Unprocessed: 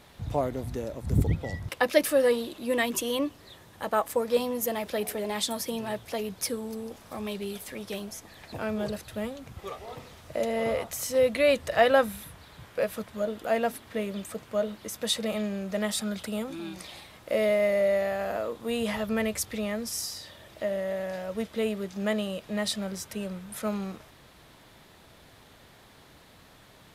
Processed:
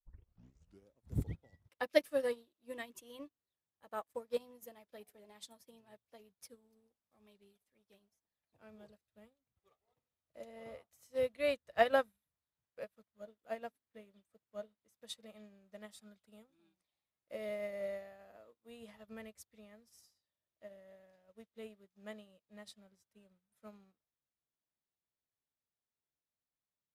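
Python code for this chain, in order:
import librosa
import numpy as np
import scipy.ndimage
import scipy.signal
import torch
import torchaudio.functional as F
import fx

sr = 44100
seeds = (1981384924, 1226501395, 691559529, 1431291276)

y = fx.tape_start_head(x, sr, length_s=0.95)
y = fx.upward_expand(y, sr, threshold_db=-44.0, expansion=2.5)
y = y * librosa.db_to_amplitude(-6.0)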